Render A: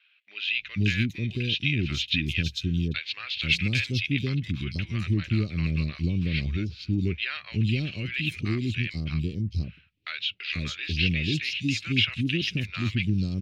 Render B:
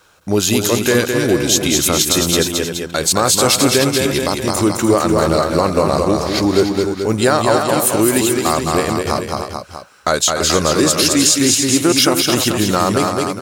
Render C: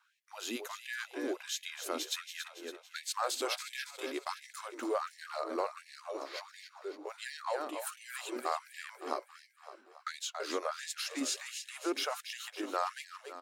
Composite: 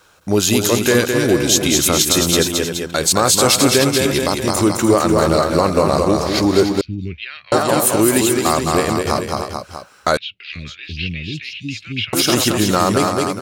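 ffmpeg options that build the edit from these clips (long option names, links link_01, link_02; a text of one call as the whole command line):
ffmpeg -i take0.wav -i take1.wav -filter_complex "[0:a]asplit=2[link_01][link_02];[1:a]asplit=3[link_03][link_04][link_05];[link_03]atrim=end=6.812[link_06];[link_01]atrim=start=6.808:end=7.522[link_07];[link_04]atrim=start=7.518:end=10.172[link_08];[link_02]atrim=start=10.168:end=12.132[link_09];[link_05]atrim=start=12.128[link_10];[link_06][link_07]acrossfade=duration=0.004:curve1=hsin:curve2=hsin[link_11];[link_11][link_08]acrossfade=duration=0.004:curve1=hsin:curve2=hsin[link_12];[link_12][link_09]acrossfade=duration=0.004:curve1=hsin:curve2=hsin[link_13];[link_13][link_10]acrossfade=duration=0.004:curve1=hsin:curve2=hsin" out.wav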